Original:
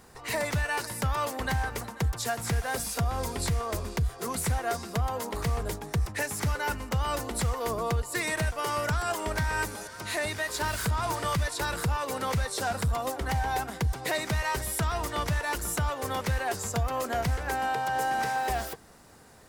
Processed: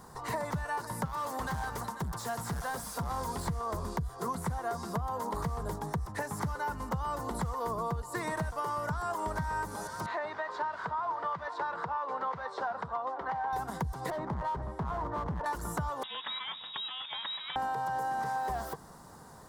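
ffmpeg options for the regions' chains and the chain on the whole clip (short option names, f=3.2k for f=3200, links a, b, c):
-filter_complex "[0:a]asettb=1/sr,asplit=3[a][b][c];[a]atrim=end=1.054[d];[b]atrim=start=1.05:end=3.47,asetpts=PTS-STARTPTS,afade=t=in:d=0.004:c=qsin,afade=t=out:st=2.416:d=0.004:c=qsin,tiltshelf=f=1.5k:g=-3.5,asoftclip=type=hard:threshold=-31.5dB[e];[c]atrim=start=3.466[f];[d][e]acrossfade=d=0.004:c1=hsin:c2=qsin[g];[g][f]acrossfade=d=0.004:c1=qsin:c2=hsin,asettb=1/sr,asplit=3[h][i][j];[h]atrim=end=10.064[k];[i]atrim=start=10.06:end=13.53,asetpts=PTS-STARTPTS,afade=t=in:d=0.004:c=qsin,afade=t=out:st=3.466:d=0.004:c=qsin,highpass=610,lowpass=2.7k,aemphasis=mode=reproduction:type=bsi[l];[j]atrim=start=13.526[m];[k][l]acrossfade=d=0.004:c1=hsin:c2=qsin[n];[n][m]acrossfade=d=0.004:c1=qsin:c2=hsin,asettb=1/sr,asplit=3[o][p][q];[o]atrim=end=14.104[r];[p]atrim=start=14.1:end=15.46,asetpts=PTS-STARTPTS,afade=t=in:d=0.004:c=qsin,afade=t=out:st=1.356:d=0.004:c=qsin,lowpass=1.1k,asoftclip=type=hard:threshold=-32.5dB[s];[q]atrim=start=15.456[t];[r][s]acrossfade=d=0.004:c1=hsin:c2=qsin[u];[u][t]acrossfade=d=0.004:c1=qsin:c2=hsin,asettb=1/sr,asplit=3[v][w][x];[v]atrim=end=16.034[y];[w]atrim=start=16.03:end=17.56,asetpts=PTS-STARTPTS,afade=t=in:d=0.004:c=qsin,afade=t=out:st=1.526:d=0.004:c=qsin,adynamicsmooth=sensitivity=7.5:basefreq=2.9k,lowpass=f=3.3k:t=q:w=0.5098,lowpass=f=3.3k:t=q:w=0.6013,lowpass=f=3.3k:t=q:w=0.9,lowpass=f=3.3k:t=q:w=2.563,afreqshift=-3900,highpass=97[z];[x]atrim=start=17.556[aa];[y][z]acrossfade=d=0.004:c1=hsin:c2=qsin[ab];[ab][aa]acrossfade=d=0.004:c1=qsin:c2=hsin,acrossover=split=2600[ac][ad];[ad]acompressor=threshold=-41dB:ratio=4:attack=1:release=60[ae];[ac][ae]amix=inputs=2:normalize=0,equalizer=f=160:t=o:w=0.67:g=7,equalizer=f=1k:t=o:w=0.67:g=9,equalizer=f=2.5k:t=o:w=0.67:g=-11,acompressor=threshold=-31dB:ratio=6"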